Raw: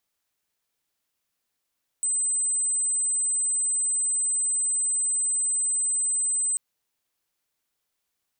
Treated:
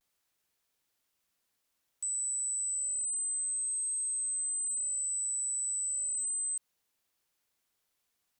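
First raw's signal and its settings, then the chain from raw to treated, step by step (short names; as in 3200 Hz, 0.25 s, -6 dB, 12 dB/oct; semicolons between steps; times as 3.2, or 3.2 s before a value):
tone sine 8110 Hz -22 dBFS 4.54 s
vibrato 0.32 Hz 29 cents; limiter -30.5 dBFS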